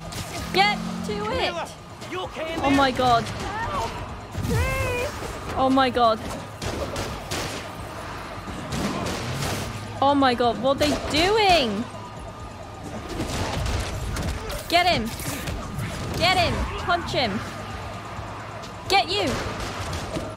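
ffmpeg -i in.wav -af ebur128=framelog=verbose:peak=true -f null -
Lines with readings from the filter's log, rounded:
Integrated loudness:
  I:         -24.4 LUFS
  Threshold: -34.7 LUFS
Loudness range:
  LRA:         5.3 LU
  Threshold: -44.6 LUFS
  LRA low:   -27.3 LUFS
  LRA high:  -22.0 LUFS
True peak:
  Peak:       -5.9 dBFS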